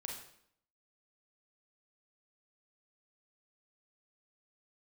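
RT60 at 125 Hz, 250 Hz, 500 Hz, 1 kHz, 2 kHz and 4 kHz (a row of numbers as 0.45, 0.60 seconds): 0.70, 0.80, 0.70, 0.65, 0.65, 0.60 seconds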